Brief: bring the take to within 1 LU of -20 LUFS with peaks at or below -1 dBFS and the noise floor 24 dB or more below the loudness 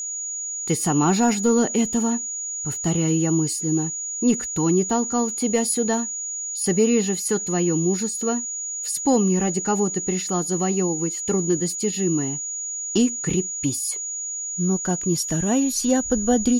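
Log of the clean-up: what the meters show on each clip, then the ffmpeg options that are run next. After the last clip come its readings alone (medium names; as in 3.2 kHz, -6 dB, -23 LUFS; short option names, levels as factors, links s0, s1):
steady tone 6.8 kHz; tone level -27 dBFS; loudness -22.0 LUFS; peak level -7.5 dBFS; loudness target -20.0 LUFS
-> -af "bandreject=f=6800:w=30"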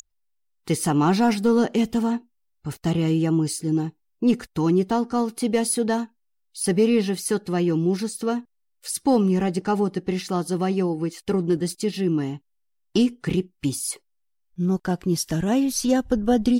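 steady tone not found; loudness -23.5 LUFS; peak level -8.5 dBFS; loudness target -20.0 LUFS
-> -af "volume=1.5"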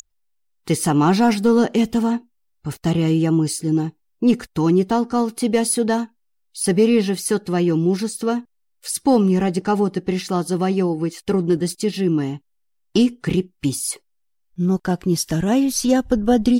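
loudness -20.0 LUFS; peak level -4.5 dBFS; noise floor -68 dBFS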